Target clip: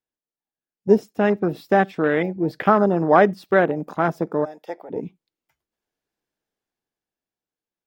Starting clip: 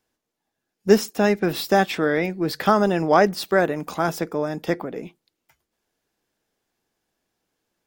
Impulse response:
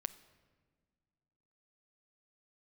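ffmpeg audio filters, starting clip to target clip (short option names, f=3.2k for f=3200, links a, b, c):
-filter_complex "[0:a]afwtdn=0.0447,asplit=3[a][b][c];[a]afade=t=out:st=4.44:d=0.02[d];[b]highpass=880,afade=t=in:st=4.44:d=0.02,afade=t=out:st=4.89:d=0.02[e];[c]afade=t=in:st=4.89:d=0.02[f];[d][e][f]amix=inputs=3:normalize=0,dynaudnorm=f=220:g=13:m=10.5dB,asplit=2[g][h];[1:a]atrim=start_sample=2205,atrim=end_sample=3969,lowpass=6k[i];[h][i]afir=irnorm=-1:irlink=0,volume=-7.5dB[j];[g][j]amix=inputs=2:normalize=0,volume=-3dB"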